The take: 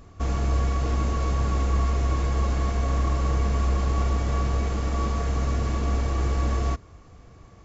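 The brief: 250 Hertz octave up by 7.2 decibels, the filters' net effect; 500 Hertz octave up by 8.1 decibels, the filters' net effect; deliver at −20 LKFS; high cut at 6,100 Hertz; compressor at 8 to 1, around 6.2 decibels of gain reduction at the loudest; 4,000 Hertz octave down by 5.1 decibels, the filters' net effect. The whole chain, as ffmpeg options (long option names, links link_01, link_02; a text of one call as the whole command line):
ffmpeg -i in.wav -af "lowpass=6100,equalizer=frequency=250:width_type=o:gain=7,equalizer=frequency=500:width_type=o:gain=8,equalizer=frequency=4000:width_type=o:gain=-6,acompressor=threshold=-24dB:ratio=8,volume=9.5dB" out.wav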